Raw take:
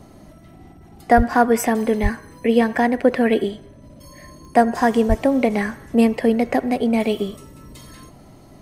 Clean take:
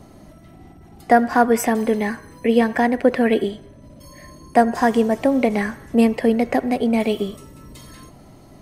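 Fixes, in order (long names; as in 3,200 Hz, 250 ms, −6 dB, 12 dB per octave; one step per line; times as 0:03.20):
click removal
0:01.16–0:01.28: high-pass filter 140 Hz 24 dB per octave
0:02.02–0:02.14: high-pass filter 140 Hz 24 dB per octave
0:05.08–0:05.20: high-pass filter 140 Hz 24 dB per octave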